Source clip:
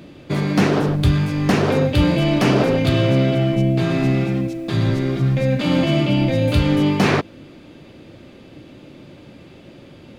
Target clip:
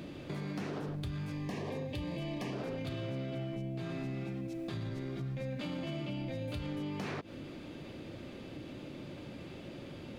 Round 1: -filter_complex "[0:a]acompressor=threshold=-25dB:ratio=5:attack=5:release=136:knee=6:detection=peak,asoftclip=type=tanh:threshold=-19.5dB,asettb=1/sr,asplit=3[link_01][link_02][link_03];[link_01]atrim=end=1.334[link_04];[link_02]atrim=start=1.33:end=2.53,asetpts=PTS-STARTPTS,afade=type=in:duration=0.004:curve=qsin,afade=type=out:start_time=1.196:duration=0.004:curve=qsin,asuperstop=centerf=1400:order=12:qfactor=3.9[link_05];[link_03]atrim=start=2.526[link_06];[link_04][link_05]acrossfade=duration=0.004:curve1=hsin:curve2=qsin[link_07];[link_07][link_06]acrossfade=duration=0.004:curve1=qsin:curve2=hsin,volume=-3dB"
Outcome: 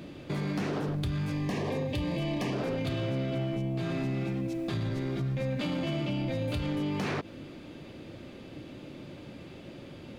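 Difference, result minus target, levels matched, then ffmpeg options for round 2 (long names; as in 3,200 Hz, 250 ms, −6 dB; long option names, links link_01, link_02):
downward compressor: peak gain reduction −8 dB
-filter_complex "[0:a]acompressor=threshold=-35dB:ratio=5:attack=5:release=136:knee=6:detection=peak,asoftclip=type=tanh:threshold=-19.5dB,asettb=1/sr,asplit=3[link_01][link_02][link_03];[link_01]atrim=end=1.334[link_04];[link_02]atrim=start=1.33:end=2.53,asetpts=PTS-STARTPTS,afade=type=in:duration=0.004:curve=qsin,afade=type=out:start_time=1.196:duration=0.004:curve=qsin,asuperstop=centerf=1400:order=12:qfactor=3.9[link_05];[link_03]atrim=start=2.526[link_06];[link_04][link_05]acrossfade=duration=0.004:curve1=hsin:curve2=qsin[link_07];[link_07][link_06]acrossfade=duration=0.004:curve1=qsin:curve2=hsin,volume=-3dB"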